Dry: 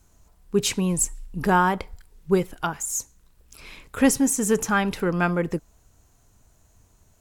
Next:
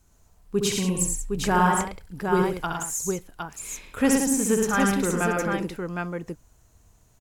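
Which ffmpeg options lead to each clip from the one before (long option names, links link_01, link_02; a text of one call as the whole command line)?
ffmpeg -i in.wav -af "aecho=1:1:66|107|173|761:0.562|0.596|0.316|0.596,volume=-3.5dB" out.wav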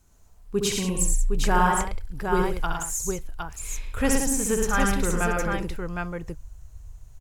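ffmpeg -i in.wav -af "asubboost=boost=10.5:cutoff=72" out.wav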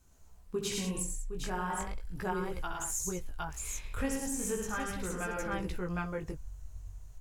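ffmpeg -i in.wav -af "acompressor=threshold=-27dB:ratio=12,flanger=delay=15:depth=7.3:speed=0.37" out.wav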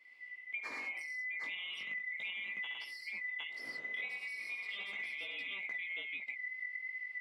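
ffmpeg -i in.wav -filter_complex "[0:a]afftfilt=real='real(if(lt(b,920),b+92*(1-2*mod(floor(b/92),2)),b),0)':imag='imag(if(lt(b,920),b+92*(1-2*mod(floor(b/92),2)),b),0)':win_size=2048:overlap=0.75,acompressor=threshold=-41dB:ratio=6,acrossover=split=180 3400:gain=0.0891 1 0.0794[link_01][link_02][link_03];[link_01][link_02][link_03]amix=inputs=3:normalize=0,volume=3.5dB" out.wav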